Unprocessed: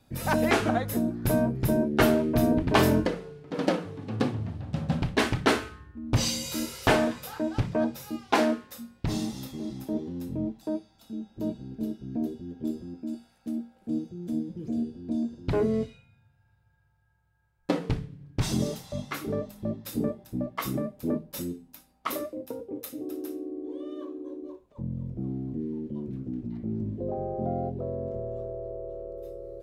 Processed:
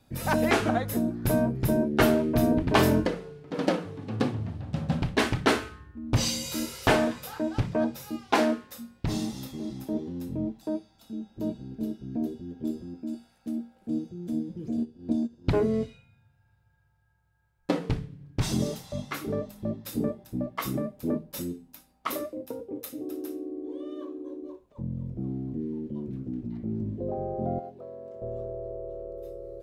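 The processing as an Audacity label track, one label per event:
14.770000	15.600000	transient shaper attack +5 dB, sustain -10 dB
27.590000	28.220000	high-pass 1.2 kHz 6 dB/octave

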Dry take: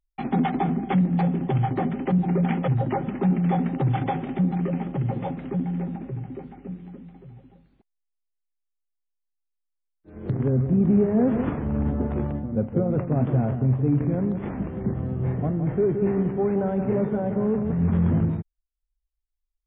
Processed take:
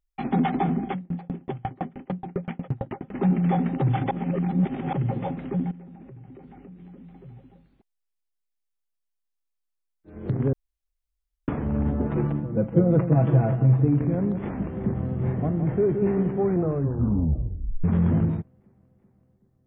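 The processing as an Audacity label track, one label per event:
0.880000	3.130000	sawtooth tremolo in dB decaying 4.5 Hz -> 11 Hz, depth 34 dB
4.110000	4.930000	reverse
5.710000	7.190000	compression 8:1, threshold -41 dBFS
10.530000	11.480000	room tone
12.060000	13.850000	comb 6.1 ms, depth 95%
14.420000	15.180000	echo throw 380 ms, feedback 75%, level -11 dB
16.420000	16.420000	tape stop 1.42 s

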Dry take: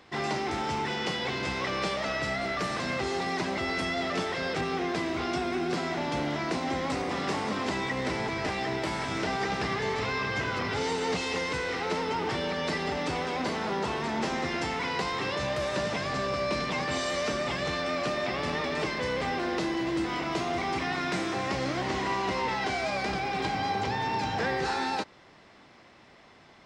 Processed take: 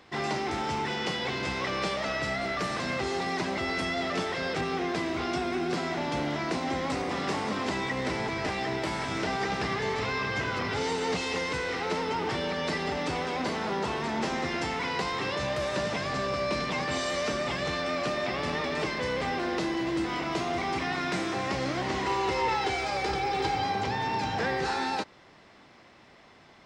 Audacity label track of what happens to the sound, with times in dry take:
22.060000	23.640000	comb 2.3 ms

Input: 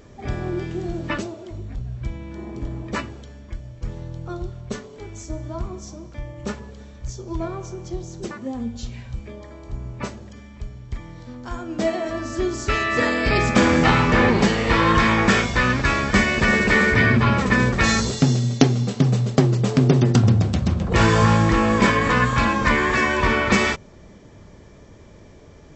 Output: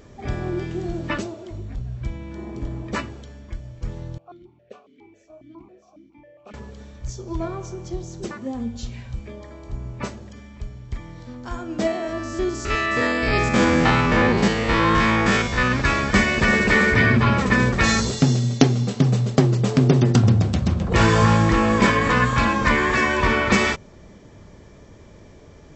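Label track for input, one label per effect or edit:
4.180000	6.540000	stepped vowel filter 7.3 Hz
11.870000	15.720000	spectrogram pixelated in time every 50 ms

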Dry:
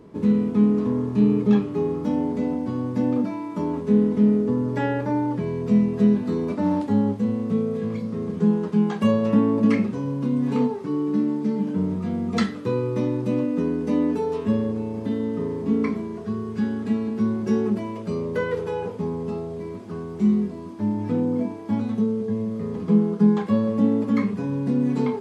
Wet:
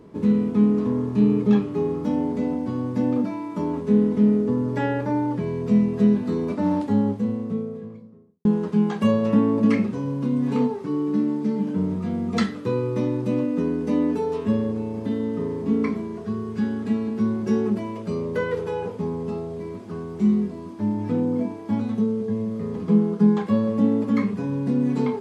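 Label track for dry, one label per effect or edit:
6.910000	8.450000	studio fade out

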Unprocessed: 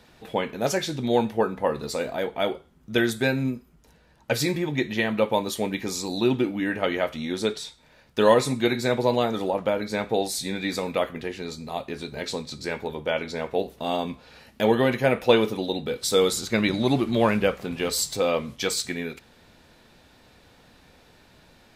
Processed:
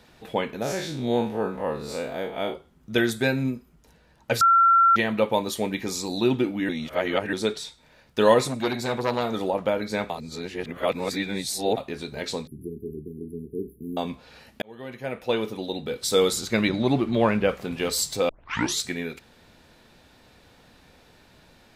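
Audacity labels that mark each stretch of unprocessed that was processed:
0.620000	2.540000	spectral blur width 96 ms
4.410000	4.960000	bleep 1.36 kHz -13.5 dBFS
6.690000	7.330000	reverse
8.470000	9.320000	transformer saturation saturates under 1.4 kHz
10.100000	11.770000	reverse
12.470000	13.970000	brick-wall FIR band-stop 440–9800 Hz
14.620000	16.180000	fade in
16.680000	17.490000	treble shelf 5.2 kHz -11.5 dB
18.290000	18.290000	tape start 0.53 s

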